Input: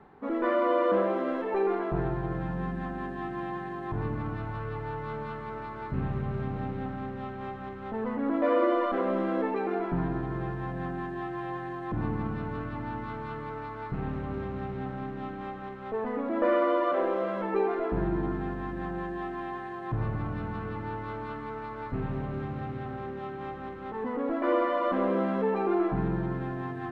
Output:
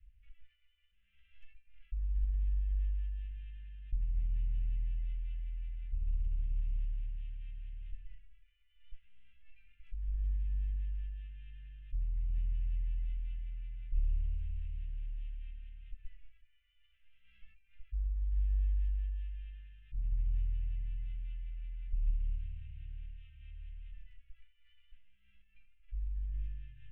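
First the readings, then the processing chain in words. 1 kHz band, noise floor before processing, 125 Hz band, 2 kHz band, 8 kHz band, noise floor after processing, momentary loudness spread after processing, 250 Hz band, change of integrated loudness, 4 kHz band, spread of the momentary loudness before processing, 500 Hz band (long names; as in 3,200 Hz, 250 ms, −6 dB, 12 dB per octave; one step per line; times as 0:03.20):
below −40 dB, −39 dBFS, −6.0 dB, −27.5 dB, can't be measured, −68 dBFS, 15 LU, below −40 dB, −8.5 dB, −17.0 dB, 11 LU, below −40 dB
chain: elliptic low-pass filter 2,800 Hz, stop band 40 dB
compressor whose output falls as the input rises −34 dBFS, ratio −1
inverse Chebyshev band-stop filter 240–1,100 Hz, stop band 80 dB
level +13 dB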